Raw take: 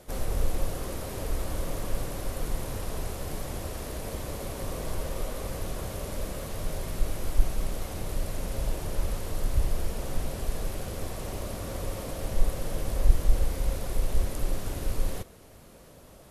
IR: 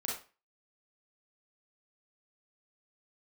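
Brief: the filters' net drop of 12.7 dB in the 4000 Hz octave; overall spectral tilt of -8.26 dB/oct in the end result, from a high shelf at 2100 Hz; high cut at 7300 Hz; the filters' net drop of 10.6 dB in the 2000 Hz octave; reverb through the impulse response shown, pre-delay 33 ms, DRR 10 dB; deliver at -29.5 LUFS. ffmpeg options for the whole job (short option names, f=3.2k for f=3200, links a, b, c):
-filter_complex "[0:a]lowpass=7.3k,equalizer=f=2k:t=o:g=-8,highshelf=f=2.1k:g=-8,equalizer=f=4k:t=o:g=-5.5,asplit=2[a][b];[1:a]atrim=start_sample=2205,adelay=33[c];[b][c]afir=irnorm=-1:irlink=0,volume=-12.5dB[d];[a][d]amix=inputs=2:normalize=0,volume=5dB"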